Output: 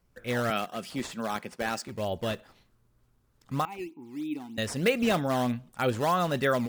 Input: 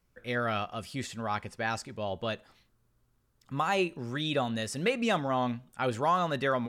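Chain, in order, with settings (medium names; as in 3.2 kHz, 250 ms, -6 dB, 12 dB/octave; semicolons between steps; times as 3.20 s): 0.50–1.88 s: high-pass 160 Hz 24 dB/octave; dynamic bell 980 Hz, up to -5 dB, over -42 dBFS, Q 1.9; 3.65–4.58 s: vowel filter u; in parallel at -4.5 dB: decimation with a swept rate 11×, swing 160% 3.2 Hz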